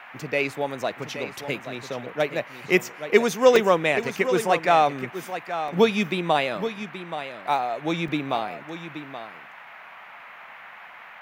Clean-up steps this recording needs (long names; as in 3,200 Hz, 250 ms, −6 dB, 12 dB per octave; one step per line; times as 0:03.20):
repair the gap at 0:03.56/0:05.68/0:08.08, 3 ms
noise reduction from a noise print 24 dB
echo removal 826 ms −10.5 dB